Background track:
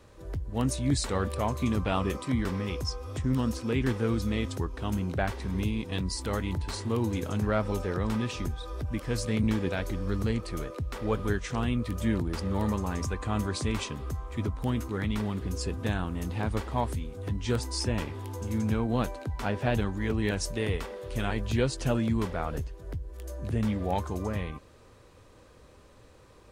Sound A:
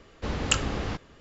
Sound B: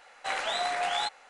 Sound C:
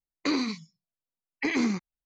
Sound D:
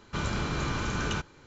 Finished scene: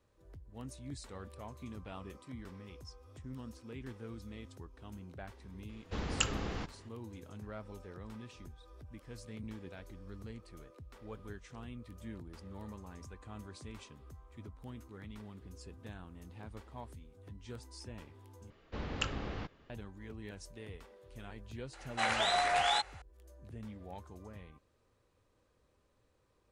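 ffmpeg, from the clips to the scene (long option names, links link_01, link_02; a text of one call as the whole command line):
ffmpeg -i bed.wav -i cue0.wav -i cue1.wav -filter_complex "[1:a]asplit=2[link_01][link_02];[0:a]volume=-18.5dB[link_03];[link_01]bandreject=frequency=570:width=16[link_04];[link_02]lowpass=4300[link_05];[link_03]asplit=2[link_06][link_07];[link_06]atrim=end=18.504[link_08];[link_05]atrim=end=1.2,asetpts=PTS-STARTPTS,volume=-9.5dB[link_09];[link_07]atrim=start=19.696[link_10];[link_04]atrim=end=1.2,asetpts=PTS-STARTPTS,volume=-7.5dB,afade=type=in:duration=0.004:curve=hsin,afade=type=out:start_time=1.196:duration=0.004:curve=hsin,adelay=250929S[link_11];[2:a]atrim=end=1.29,asetpts=PTS-STARTPTS,volume=-0.5dB,afade=type=in:duration=0.004:curve=hsin,afade=type=out:start_time=1.286:duration=0.004:curve=hsin,adelay=21730[link_12];[link_08][link_09]acrossfade=duration=0.004:curve1=hsin:curve2=hsin[link_13];[link_13][link_10]acrossfade=duration=0.004:curve1=hsin:curve2=hsin[link_14];[link_14][link_11][link_12]amix=inputs=3:normalize=0" out.wav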